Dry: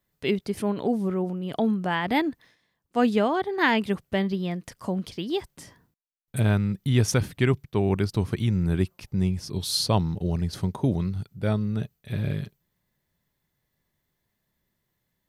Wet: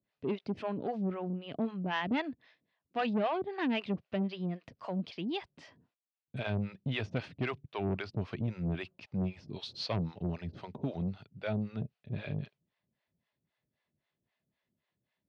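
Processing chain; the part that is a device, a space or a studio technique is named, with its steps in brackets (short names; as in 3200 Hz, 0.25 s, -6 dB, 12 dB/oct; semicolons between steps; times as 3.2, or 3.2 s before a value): guitar amplifier with harmonic tremolo (harmonic tremolo 3.8 Hz, depth 100%, crossover 510 Hz; soft clip -24.5 dBFS, distortion -12 dB; speaker cabinet 89–4500 Hz, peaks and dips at 250 Hz +4 dB, 640 Hz +5 dB, 2600 Hz +6 dB); gain -2.5 dB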